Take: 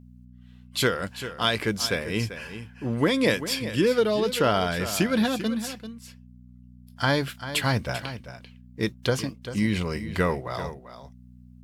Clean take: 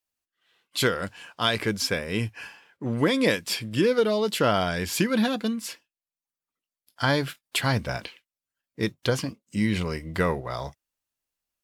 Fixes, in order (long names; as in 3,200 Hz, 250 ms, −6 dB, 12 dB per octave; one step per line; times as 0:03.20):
hum removal 61.3 Hz, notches 4
echo removal 392 ms −12 dB